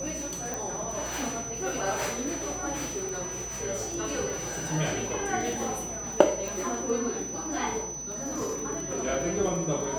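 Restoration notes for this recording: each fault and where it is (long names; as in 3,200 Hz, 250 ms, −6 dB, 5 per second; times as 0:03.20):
surface crackle 28 per second −34 dBFS
whistle 6,000 Hz −35 dBFS
0:00.54: click
0:03.09: click
0:06.48: click
0:08.19–0:08.62: clipping −27.5 dBFS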